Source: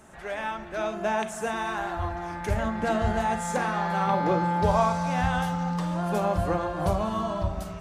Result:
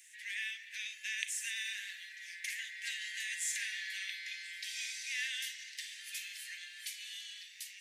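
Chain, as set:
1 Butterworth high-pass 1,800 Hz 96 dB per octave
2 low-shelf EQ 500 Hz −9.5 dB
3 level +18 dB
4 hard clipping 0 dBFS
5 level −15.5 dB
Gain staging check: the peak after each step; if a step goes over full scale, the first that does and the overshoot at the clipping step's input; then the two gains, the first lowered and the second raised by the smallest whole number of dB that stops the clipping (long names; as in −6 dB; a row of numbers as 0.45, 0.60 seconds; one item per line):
−20.0, −20.0, −2.0, −2.0, −17.5 dBFS
no step passes full scale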